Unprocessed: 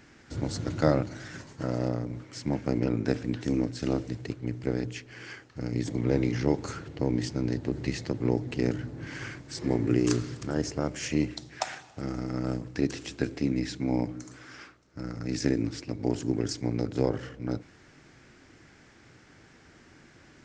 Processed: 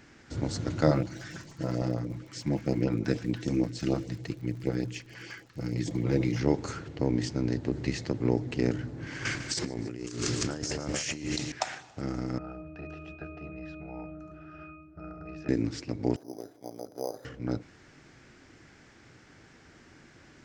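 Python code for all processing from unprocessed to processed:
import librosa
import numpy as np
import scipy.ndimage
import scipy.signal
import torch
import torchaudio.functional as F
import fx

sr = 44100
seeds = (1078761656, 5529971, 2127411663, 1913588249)

y = fx.comb(x, sr, ms=6.0, depth=0.38, at=(0.86, 6.39), fade=0.02)
y = fx.filter_lfo_notch(y, sr, shape='saw_up', hz=6.6, low_hz=260.0, high_hz=2000.0, q=1.2, at=(0.86, 6.39), fade=0.02)
y = fx.dmg_crackle(y, sr, seeds[0], per_s=56.0, level_db=-44.0, at=(0.86, 6.39), fade=0.02)
y = fx.chain(y, sr, fx.high_shelf(hz=2200.0, db=9.5),
    fx.echo_split(split_hz=470.0, low_ms=95, high_ms=151, feedback_pct=52, wet_db=-11.5),
    fx.over_compress(threshold_db=-34.0, ratio=-1.0), at=(9.25, 11.52))
y = fx.chain(y, sr, fx.lowpass(hz=3300.0, slope=6),
    fx.octave_resonator(note='D#', decay_s=0.58),
    fx.spectral_comp(ratio=4.0), at=(12.38, 15.49))
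y = fx.chain(y, sr, fx.bandpass_q(hz=670.0, q=3.0),
    fx.resample_bad(factor=8, down='filtered', up='hold'), at=(16.16, 17.25))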